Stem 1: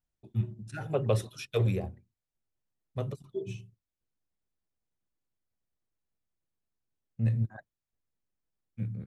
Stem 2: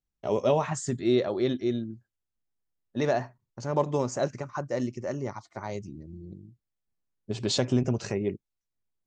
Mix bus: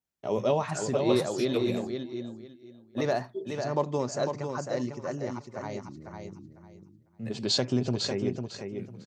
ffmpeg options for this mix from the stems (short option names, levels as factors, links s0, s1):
-filter_complex "[0:a]highpass=210,volume=0.944[s0];[1:a]volume=0.794,asplit=2[s1][s2];[s2]volume=0.501,aecho=0:1:500|1000|1500:1|0.21|0.0441[s3];[s0][s1][s3]amix=inputs=3:normalize=0,highpass=100,adynamicequalizer=threshold=0.00112:dfrequency=4500:dqfactor=4.3:tfrequency=4500:tqfactor=4.3:attack=5:release=100:ratio=0.375:range=4:mode=boostabove:tftype=bell"